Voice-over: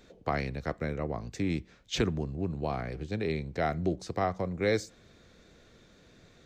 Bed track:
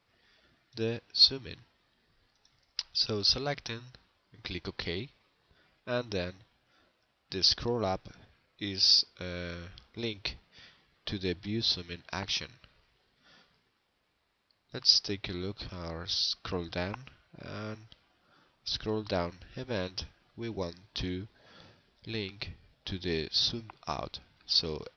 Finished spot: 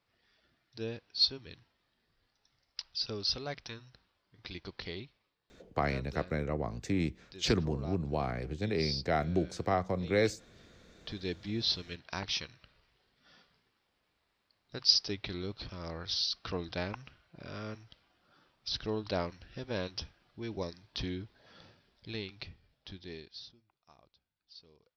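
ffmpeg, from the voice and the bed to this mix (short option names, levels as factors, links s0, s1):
-filter_complex "[0:a]adelay=5500,volume=0.944[s0];[1:a]volume=2,afade=t=out:st=5.02:d=0.39:silence=0.398107,afade=t=in:st=10.68:d=0.83:silence=0.251189,afade=t=out:st=21.85:d=1.68:silence=0.0562341[s1];[s0][s1]amix=inputs=2:normalize=0"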